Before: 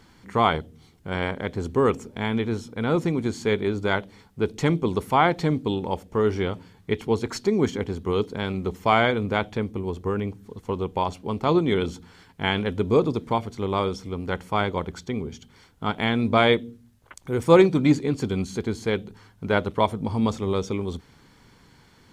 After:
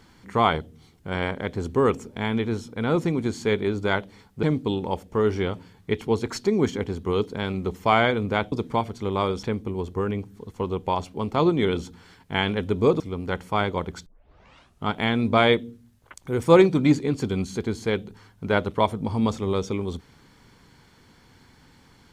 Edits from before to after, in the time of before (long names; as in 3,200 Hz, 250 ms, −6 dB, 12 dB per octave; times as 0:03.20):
0:04.43–0:05.43: remove
0:13.09–0:14.00: move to 0:09.52
0:15.06: tape start 0.81 s